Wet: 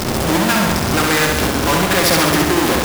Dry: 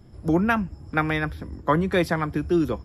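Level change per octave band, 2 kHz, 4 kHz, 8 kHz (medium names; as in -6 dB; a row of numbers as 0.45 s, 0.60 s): +11.0 dB, +21.0 dB, +30.0 dB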